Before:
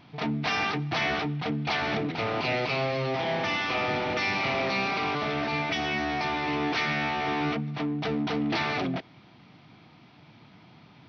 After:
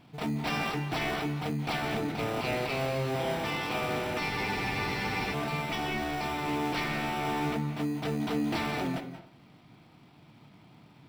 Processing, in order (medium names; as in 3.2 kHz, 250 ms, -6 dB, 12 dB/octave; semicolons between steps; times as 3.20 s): in parallel at -5.5 dB: sample-and-hold 20×; on the sum: reverberation RT60 0.45 s, pre-delay 167 ms, DRR 9 dB; spectral freeze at 4.33 s, 1.01 s; trim -6 dB